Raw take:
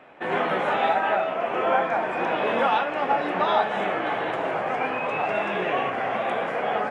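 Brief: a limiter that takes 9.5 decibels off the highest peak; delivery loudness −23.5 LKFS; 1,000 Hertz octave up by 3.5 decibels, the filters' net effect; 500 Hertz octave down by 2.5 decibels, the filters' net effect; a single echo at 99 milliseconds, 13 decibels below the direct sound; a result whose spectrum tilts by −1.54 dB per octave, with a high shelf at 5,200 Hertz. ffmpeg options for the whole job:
ffmpeg -i in.wav -af "equalizer=frequency=500:width_type=o:gain=-6.5,equalizer=frequency=1000:width_type=o:gain=7,highshelf=frequency=5200:gain=3.5,alimiter=limit=-16dB:level=0:latency=1,aecho=1:1:99:0.224,volume=1.5dB" out.wav

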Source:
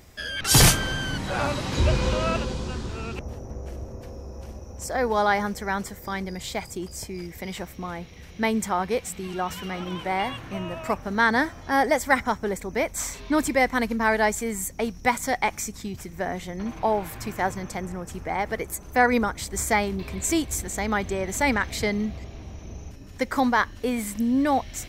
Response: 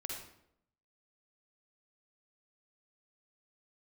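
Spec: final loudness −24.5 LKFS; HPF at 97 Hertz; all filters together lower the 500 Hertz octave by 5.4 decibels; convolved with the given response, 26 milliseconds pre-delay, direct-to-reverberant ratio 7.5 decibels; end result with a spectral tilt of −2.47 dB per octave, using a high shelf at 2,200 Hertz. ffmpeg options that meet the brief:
-filter_complex "[0:a]highpass=97,equalizer=frequency=500:width_type=o:gain=-7.5,highshelf=frequency=2200:gain=9,asplit=2[link_01][link_02];[1:a]atrim=start_sample=2205,adelay=26[link_03];[link_02][link_03]afir=irnorm=-1:irlink=0,volume=-7dB[link_04];[link_01][link_04]amix=inputs=2:normalize=0,volume=-3dB"

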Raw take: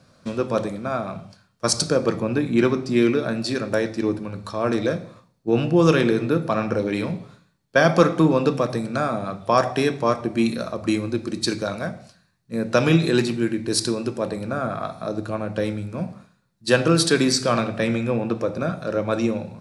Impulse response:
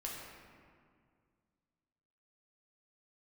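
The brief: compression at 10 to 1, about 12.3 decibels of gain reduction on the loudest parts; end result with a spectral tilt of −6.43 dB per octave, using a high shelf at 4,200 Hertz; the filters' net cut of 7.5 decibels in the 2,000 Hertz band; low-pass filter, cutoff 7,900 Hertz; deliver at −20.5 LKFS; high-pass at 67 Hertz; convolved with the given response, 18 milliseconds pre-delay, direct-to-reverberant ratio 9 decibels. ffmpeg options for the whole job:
-filter_complex "[0:a]highpass=67,lowpass=7900,equalizer=frequency=2000:width_type=o:gain=-9,highshelf=frequency=4200:gain=-8,acompressor=threshold=-24dB:ratio=10,asplit=2[link_01][link_02];[1:a]atrim=start_sample=2205,adelay=18[link_03];[link_02][link_03]afir=irnorm=-1:irlink=0,volume=-9dB[link_04];[link_01][link_04]amix=inputs=2:normalize=0,volume=9dB"

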